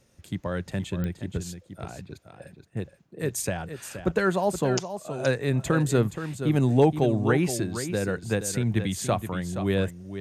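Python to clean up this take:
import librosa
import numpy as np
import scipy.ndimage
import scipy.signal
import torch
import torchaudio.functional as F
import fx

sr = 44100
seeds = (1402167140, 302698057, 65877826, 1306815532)

y = fx.fix_declip(x, sr, threshold_db=-8.0)
y = fx.fix_declick_ar(y, sr, threshold=10.0)
y = fx.fix_echo_inverse(y, sr, delay_ms=473, level_db=-10.0)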